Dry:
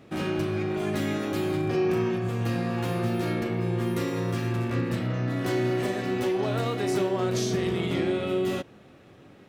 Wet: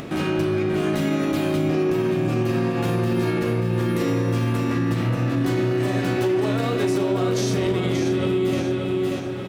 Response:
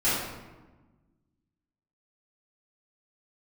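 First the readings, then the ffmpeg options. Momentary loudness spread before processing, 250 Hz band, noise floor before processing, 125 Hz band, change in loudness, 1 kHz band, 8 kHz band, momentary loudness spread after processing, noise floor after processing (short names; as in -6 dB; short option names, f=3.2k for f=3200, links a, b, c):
3 LU, +6.0 dB, -52 dBFS, +5.5 dB, +5.0 dB, +4.0 dB, +4.0 dB, 1 LU, -26 dBFS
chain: -filter_complex "[0:a]acompressor=mode=upward:threshold=-34dB:ratio=2.5,aecho=1:1:584|1168|1752|2336:0.562|0.202|0.0729|0.0262,asplit=2[a][b];[1:a]atrim=start_sample=2205[c];[b][c]afir=irnorm=-1:irlink=0,volume=-21.5dB[d];[a][d]amix=inputs=2:normalize=0,alimiter=limit=-16.5dB:level=0:latency=1:release=56,acompressor=threshold=-32dB:ratio=1.5,volume=7dB"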